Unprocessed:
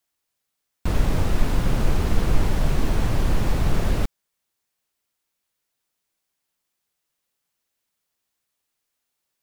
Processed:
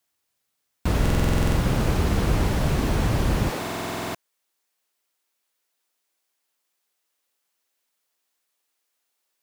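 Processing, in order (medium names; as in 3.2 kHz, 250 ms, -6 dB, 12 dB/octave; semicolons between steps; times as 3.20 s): high-pass 48 Hz 12 dB/octave, from 3.50 s 310 Hz; buffer glitch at 1.01/3.59 s, samples 2048, times 11; trim +2.5 dB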